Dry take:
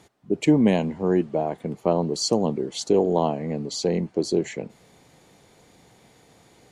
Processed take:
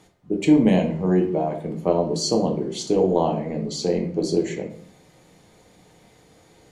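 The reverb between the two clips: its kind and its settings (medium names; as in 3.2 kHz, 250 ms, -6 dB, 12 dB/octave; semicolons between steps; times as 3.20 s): simulated room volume 71 m³, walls mixed, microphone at 0.54 m; trim -1.5 dB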